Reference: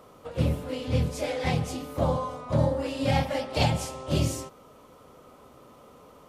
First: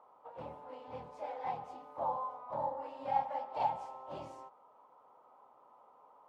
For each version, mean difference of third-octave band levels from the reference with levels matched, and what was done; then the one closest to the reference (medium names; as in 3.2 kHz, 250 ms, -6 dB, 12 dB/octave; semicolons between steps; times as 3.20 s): 10.5 dB: band-pass filter 880 Hz, Q 5.8; trim +1.5 dB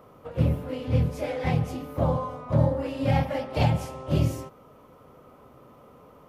4.0 dB: graphic EQ 125/4000/8000 Hz +4/-6/-10 dB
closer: second